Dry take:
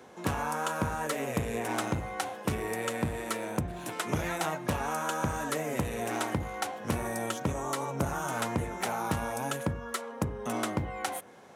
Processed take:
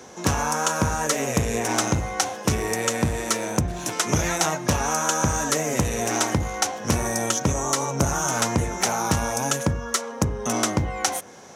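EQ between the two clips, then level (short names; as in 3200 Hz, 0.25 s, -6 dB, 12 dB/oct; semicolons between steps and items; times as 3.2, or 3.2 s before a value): low shelf 68 Hz +7.5 dB; bell 6000 Hz +14 dB 0.65 oct; +7.0 dB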